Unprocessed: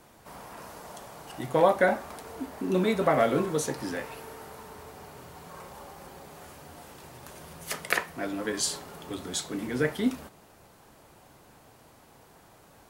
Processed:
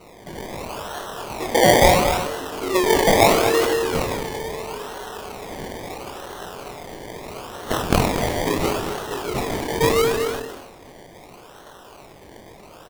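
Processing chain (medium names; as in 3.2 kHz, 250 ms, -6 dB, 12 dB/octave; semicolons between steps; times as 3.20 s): elliptic band-pass 390–5200 Hz; doubling 22 ms -3.5 dB; reverberation RT60 0.70 s, pre-delay 112 ms, DRR 6 dB; in parallel at +2 dB: compression, threshold -30 dBFS, peak gain reduction 18 dB; on the sum: decimation with a swept rate 26×, swing 60% 0.75 Hz; delay 233 ms -8.5 dB; decay stretcher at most 49 dB/s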